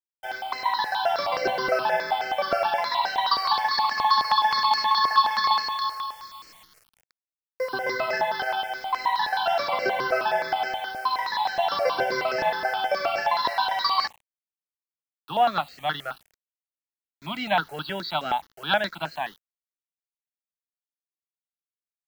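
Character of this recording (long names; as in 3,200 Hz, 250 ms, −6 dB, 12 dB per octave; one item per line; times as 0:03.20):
a quantiser's noise floor 8 bits, dither none
notches that jump at a steady rate 9.5 Hz 950–3,500 Hz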